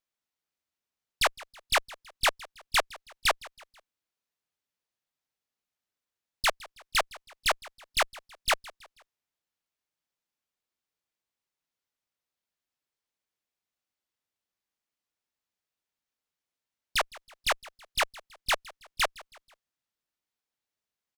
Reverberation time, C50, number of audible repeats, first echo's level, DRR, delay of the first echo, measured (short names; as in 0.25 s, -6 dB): none, none, 3, -21.0 dB, none, 0.162 s